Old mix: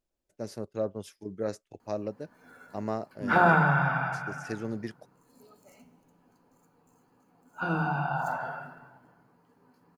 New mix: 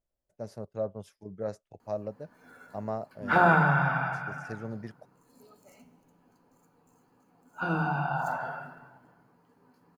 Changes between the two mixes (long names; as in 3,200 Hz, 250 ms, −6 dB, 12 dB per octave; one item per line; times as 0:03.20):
first voice: add drawn EQ curve 170 Hz 0 dB, 320 Hz −9 dB, 630 Hz +1 dB, 2,600 Hz −9 dB
second voice −5.5 dB